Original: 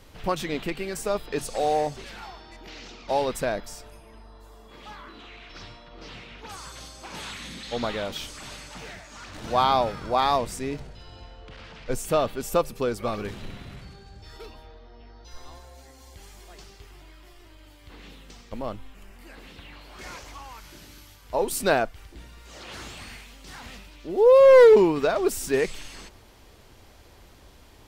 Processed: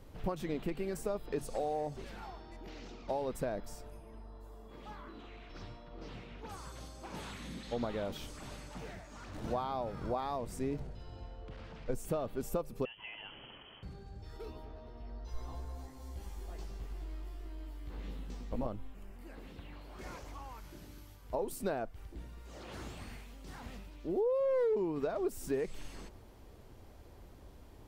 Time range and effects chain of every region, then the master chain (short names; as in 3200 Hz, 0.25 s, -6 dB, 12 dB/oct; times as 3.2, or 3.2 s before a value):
12.85–13.83 HPF 160 Hz 6 dB/oct + compressor 2:1, threshold -35 dBFS + inverted band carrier 3200 Hz
14.45–18.67 doubler 16 ms -2 dB + repeats that get brighter 0.104 s, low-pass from 400 Hz, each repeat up 2 oct, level -6 dB
whole clip: high shelf 8500 Hz +9 dB; compressor 5:1, threshold -28 dBFS; tilt shelf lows +7 dB, about 1300 Hz; gain -8.5 dB